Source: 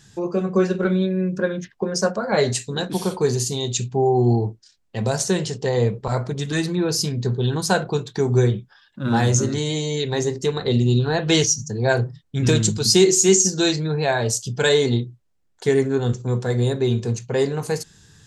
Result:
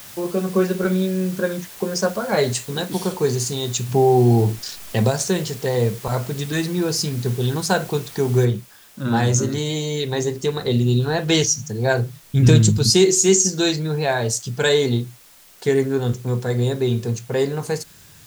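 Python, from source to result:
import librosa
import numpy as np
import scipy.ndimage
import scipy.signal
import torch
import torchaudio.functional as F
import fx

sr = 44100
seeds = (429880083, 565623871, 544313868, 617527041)

y = fx.env_flatten(x, sr, amount_pct=50, at=(3.88, 5.09), fade=0.02)
y = fx.noise_floor_step(y, sr, seeds[0], at_s=8.45, before_db=-40, after_db=-49, tilt_db=0.0)
y = fx.low_shelf(y, sr, hz=170.0, db=11.5, at=(12.23, 12.9))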